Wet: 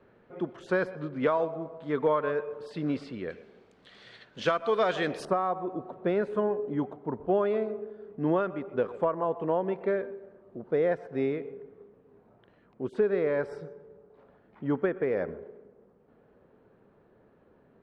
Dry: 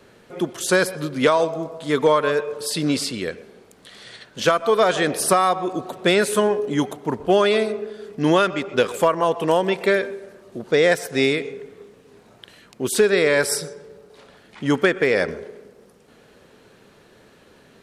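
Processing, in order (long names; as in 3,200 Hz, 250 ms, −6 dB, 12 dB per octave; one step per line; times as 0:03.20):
low-pass filter 1,700 Hz 12 dB per octave, from 0:03.30 3,700 Hz, from 0:05.25 1,100 Hz
level −8.5 dB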